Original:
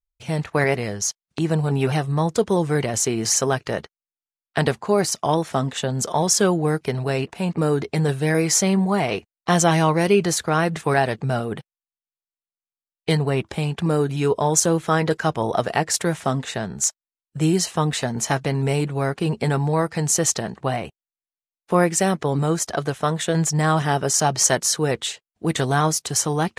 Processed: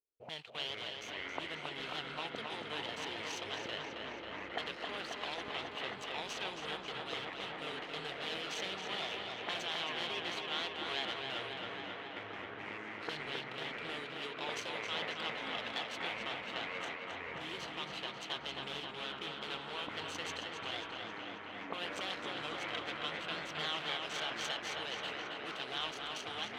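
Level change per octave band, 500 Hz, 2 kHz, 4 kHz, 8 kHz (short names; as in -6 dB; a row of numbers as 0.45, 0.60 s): -22.0, -10.5, -7.5, -30.5 dB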